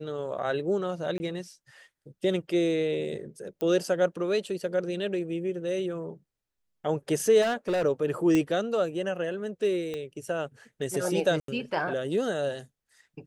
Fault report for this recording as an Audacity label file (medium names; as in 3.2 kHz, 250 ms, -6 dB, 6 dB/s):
1.180000	1.200000	dropout
3.610000	3.610000	pop -19 dBFS
7.410000	7.850000	clipped -23.5 dBFS
8.350000	8.350000	pop -14 dBFS
9.940000	9.940000	pop -22 dBFS
11.400000	11.480000	dropout 83 ms